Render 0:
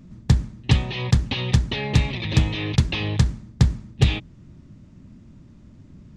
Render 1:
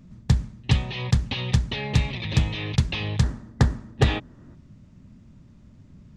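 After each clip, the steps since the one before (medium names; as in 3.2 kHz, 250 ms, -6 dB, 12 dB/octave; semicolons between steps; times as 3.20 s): time-frequency box 3.23–4.54 s, 230–2000 Hz +9 dB; peaking EQ 320 Hz -5 dB 0.51 oct; trim -2.5 dB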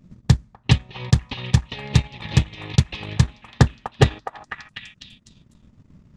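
hum notches 50/100 Hz; repeats whose band climbs or falls 249 ms, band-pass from 960 Hz, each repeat 0.7 oct, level 0 dB; transient shaper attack +9 dB, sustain -12 dB; trim -3 dB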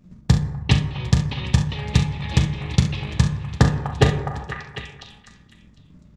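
multi-tap echo 40/68/475/754 ms -9.5/-12.5/-19.5/-19.5 dB; on a send at -6 dB: reverberation RT60 1.3 s, pre-delay 8 ms; on the sum: trim -1 dB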